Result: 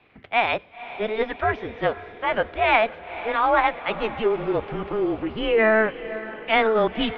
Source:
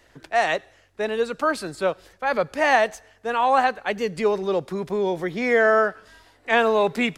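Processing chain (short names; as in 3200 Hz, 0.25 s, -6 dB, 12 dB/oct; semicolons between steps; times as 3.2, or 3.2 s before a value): formant shift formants +6 st; resonant low shelf 150 Hz +7.5 dB, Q 3; on a send: diffused feedback echo 0.503 s, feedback 57%, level -14.5 dB; on the sum: mistuned SSB -220 Hz 190–3500 Hz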